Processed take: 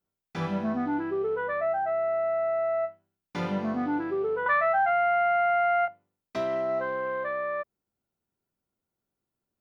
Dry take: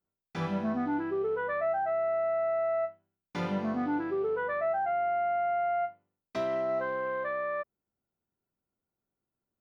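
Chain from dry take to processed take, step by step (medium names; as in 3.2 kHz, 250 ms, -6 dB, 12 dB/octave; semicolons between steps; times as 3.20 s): 4.46–5.88 s: FFT filter 190 Hz 0 dB, 350 Hz -13 dB, 1 kHz +10 dB; trim +2 dB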